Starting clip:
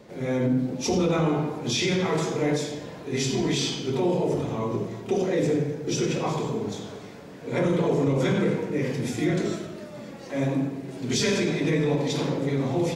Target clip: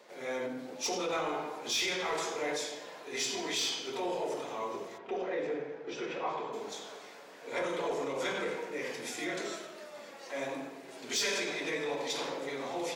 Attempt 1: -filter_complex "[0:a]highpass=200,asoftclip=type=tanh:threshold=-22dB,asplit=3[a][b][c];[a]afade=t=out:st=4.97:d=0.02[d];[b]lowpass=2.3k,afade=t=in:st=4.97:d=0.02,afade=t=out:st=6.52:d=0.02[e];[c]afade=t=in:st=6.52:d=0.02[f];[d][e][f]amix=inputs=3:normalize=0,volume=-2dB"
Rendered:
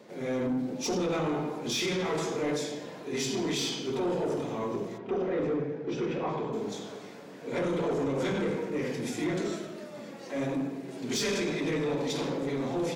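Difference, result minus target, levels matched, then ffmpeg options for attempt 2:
250 Hz band +7.0 dB
-filter_complex "[0:a]highpass=630,asoftclip=type=tanh:threshold=-22dB,asplit=3[a][b][c];[a]afade=t=out:st=4.97:d=0.02[d];[b]lowpass=2.3k,afade=t=in:st=4.97:d=0.02,afade=t=out:st=6.52:d=0.02[e];[c]afade=t=in:st=6.52:d=0.02[f];[d][e][f]amix=inputs=3:normalize=0,volume=-2dB"

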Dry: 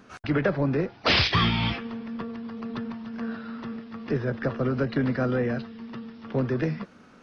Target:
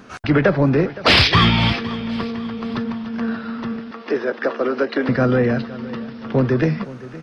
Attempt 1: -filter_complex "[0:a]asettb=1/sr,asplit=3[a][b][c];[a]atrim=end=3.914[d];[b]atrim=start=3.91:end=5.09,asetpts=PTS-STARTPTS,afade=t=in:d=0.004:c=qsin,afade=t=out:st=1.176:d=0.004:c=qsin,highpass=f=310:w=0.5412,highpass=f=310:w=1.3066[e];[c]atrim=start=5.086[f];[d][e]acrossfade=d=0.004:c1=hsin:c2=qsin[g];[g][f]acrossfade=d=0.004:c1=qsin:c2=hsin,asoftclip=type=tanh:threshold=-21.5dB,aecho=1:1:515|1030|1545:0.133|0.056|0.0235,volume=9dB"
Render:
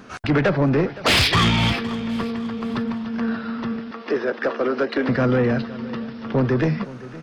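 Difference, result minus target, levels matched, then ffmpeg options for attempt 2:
soft clip: distortion +16 dB
-filter_complex "[0:a]asettb=1/sr,asplit=3[a][b][c];[a]atrim=end=3.914[d];[b]atrim=start=3.91:end=5.09,asetpts=PTS-STARTPTS,afade=t=in:d=0.004:c=qsin,afade=t=out:st=1.176:d=0.004:c=qsin,highpass=f=310:w=0.5412,highpass=f=310:w=1.3066[e];[c]atrim=start=5.086[f];[d][e]acrossfade=d=0.004:c1=hsin:c2=qsin[g];[g][f]acrossfade=d=0.004:c1=qsin:c2=hsin,asoftclip=type=tanh:threshold=-10dB,aecho=1:1:515|1030|1545:0.133|0.056|0.0235,volume=9dB"

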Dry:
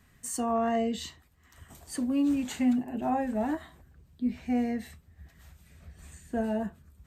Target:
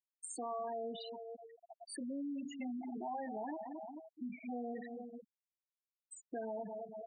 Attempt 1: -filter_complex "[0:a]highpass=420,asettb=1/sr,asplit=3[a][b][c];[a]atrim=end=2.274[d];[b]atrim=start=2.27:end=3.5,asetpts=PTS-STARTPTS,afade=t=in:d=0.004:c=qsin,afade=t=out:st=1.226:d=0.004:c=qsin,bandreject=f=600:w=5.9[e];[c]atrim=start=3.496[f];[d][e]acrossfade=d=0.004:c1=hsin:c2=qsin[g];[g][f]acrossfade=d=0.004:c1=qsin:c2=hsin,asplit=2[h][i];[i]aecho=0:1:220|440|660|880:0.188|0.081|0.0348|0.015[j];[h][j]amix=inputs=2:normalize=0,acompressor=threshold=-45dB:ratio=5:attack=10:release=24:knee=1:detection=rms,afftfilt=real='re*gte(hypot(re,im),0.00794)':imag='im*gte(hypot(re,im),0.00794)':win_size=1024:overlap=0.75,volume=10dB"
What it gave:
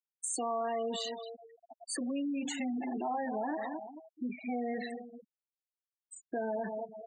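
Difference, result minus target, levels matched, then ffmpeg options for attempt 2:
compressor: peak gain reduction -6.5 dB
-filter_complex "[0:a]highpass=420,asettb=1/sr,asplit=3[a][b][c];[a]atrim=end=2.274[d];[b]atrim=start=2.27:end=3.5,asetpts=PTS-STARTPTS,afade=t=in:d=0.004:c=qsin,afade=t=out:st=1.226:d=0.004:c=qsin,bandreject=f=600:w=5.9[e];[c]atrim=start=3.496[f];[d][e]acrossfade=d=0.004:c1=hsin:c2=qsin[g];[g][f]acrossfade=d=0.004:c1=qsin:c2=hsin,asplit=2[h][i];[i]aecho=0:1:220|440|660|880:0.188|0.081|0.0348|0.015[j];[h][j]amix=inputs=2:normalize=0,acompressor=threshold=-53dB:ratio=5:attack=10:release=24:knee=1:detection=rms,afftfilt=real='re*gte(hypot(re,im),0.00794)':imag='im*gte(hypot(re,im),0.00794)':win_size=1024:overlap=0.75,volume=10dB"

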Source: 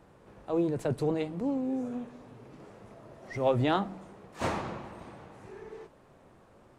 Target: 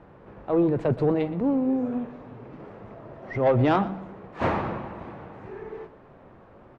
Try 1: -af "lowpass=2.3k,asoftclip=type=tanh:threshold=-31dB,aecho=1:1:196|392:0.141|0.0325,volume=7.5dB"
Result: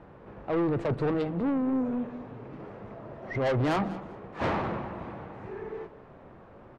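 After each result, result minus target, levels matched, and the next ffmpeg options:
echo 76 ms late; soft clip: distortion +11 dB
-af "lowpass=2.3k,asoftclip=type=tanh:threshold=-31dB,aecho=1:1:120|240:0.141|0.0325,volume=7.5dB"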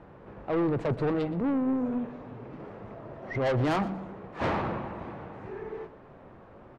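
soft clip: distortion +11 dB
-af "lowpass=2.3k,asoftclip=type=tanh:threshold=-20dB,aecho=1:1:120|240:0.141|0.0325,volume=7.5dB"

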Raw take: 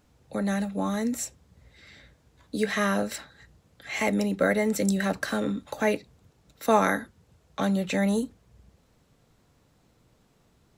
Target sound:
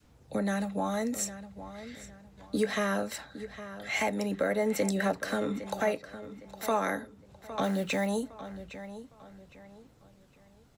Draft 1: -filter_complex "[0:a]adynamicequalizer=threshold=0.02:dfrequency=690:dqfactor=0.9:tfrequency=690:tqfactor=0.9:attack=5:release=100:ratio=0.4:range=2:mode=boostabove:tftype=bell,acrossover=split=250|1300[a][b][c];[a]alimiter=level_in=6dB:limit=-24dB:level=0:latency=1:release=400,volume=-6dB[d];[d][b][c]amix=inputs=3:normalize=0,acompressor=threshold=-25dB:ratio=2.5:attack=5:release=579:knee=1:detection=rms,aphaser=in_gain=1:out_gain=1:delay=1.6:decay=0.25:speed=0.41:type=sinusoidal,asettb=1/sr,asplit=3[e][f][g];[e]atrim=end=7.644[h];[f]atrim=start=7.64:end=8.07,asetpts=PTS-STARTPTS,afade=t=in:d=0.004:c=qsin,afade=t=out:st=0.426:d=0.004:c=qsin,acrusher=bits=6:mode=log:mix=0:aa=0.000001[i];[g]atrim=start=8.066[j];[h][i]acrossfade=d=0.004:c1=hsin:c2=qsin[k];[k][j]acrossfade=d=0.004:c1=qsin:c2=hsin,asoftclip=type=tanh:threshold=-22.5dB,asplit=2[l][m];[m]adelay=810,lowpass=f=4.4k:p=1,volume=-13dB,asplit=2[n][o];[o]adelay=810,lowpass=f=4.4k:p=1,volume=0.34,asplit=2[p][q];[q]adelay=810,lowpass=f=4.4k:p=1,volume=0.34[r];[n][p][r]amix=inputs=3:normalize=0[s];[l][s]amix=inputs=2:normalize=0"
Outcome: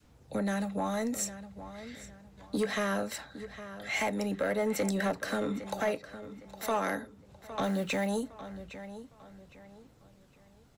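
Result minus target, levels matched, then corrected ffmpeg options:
soft clip: distortion +16 dB
-filter_complex "[0:a]adynamicequalizer=threshold=0.02:dfrequency=690:dqfactor=0.9:tfrequency=690:tqfactor=0.9:attack=5:release=100:ratio=0.4:range=2:mode=boostabove:tftype=bell,acrossover=split=250|1300[a][b][c];[a]alimiter=level_in=6dB:limit=-24dB:level=0:latency=1:release=400,volume=-6dB[d];[d][b][c]amix=inputs=3:normalize=0,acompressor=threshold=-25dB:ratio=2.5:attack=5:release=579:knee=1:detection=rms,aphaser=in_gain=1:out_gain=1:delay=1.6:decay=0.25:speed=0.41:type=sinusoidal,asettb=1/sr,asplit=3[e][f][g];[e]atrim=end=7.644[h];[f]atrim=start=7.64:end=8.07,asetpts=PTS-STARTPTS,afade=t=in:d=0.004:c=qsin,afade=t=out:st=0.426:d=0.004:c=qsin,acrusher=bits=6:mode=log:mix=0:aa=0.000001[i];[g]atrim=start=8.066[j];[h][i]acrossfade=d=0.004:c1=hsin:c2=qsin[k];[k][j]acrossfade=d=0.004:c1=qsin:c2=hsin,asoftclip=type=tanh:threshold=-12.5dB,asplit=2[l][m];[m]adelay=810,lowpass=f=4.4k:p=1,volume=-13dB,asplit=2[n][o];[o]adelay=810,lowpass=f=4.4k:p=1,volume=0.34,asplit=2[p][q];[q]adelay=810,lowpass=f=4.4k:p=1,volume=0.34[r];[n][p][r]amix=inputs=3:normalize=0[s];[l][s]amix=inputs=2:normalize=0"

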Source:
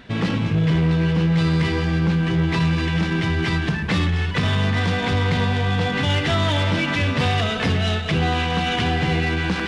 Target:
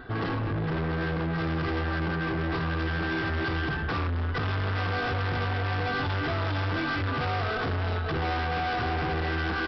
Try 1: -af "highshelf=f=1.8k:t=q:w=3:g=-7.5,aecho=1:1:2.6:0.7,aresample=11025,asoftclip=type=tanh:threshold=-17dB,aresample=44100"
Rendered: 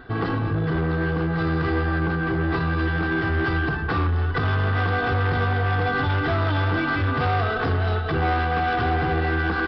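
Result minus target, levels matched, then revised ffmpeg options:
soft clip: distortion -7 dB
-af "highshelf=f=1.8k:t=q:w=3:g=-7.5,aecho=1:1:2.6:0.7,aresample=11025,asoftclip=type=tanh:threshold=-26.5dB,aresample=44100"

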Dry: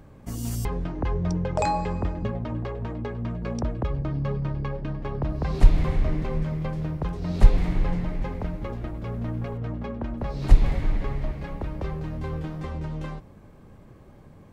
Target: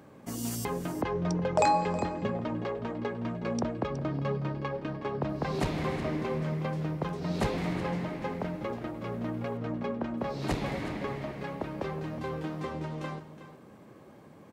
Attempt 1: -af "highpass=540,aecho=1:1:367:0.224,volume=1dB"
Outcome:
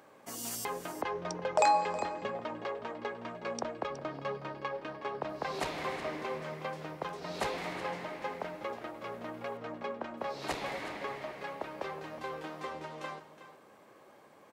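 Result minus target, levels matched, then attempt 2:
250 Hz band -7.5 dB
-af "highpass=200,aecho=1:1:367:0.224,volume=1dB"

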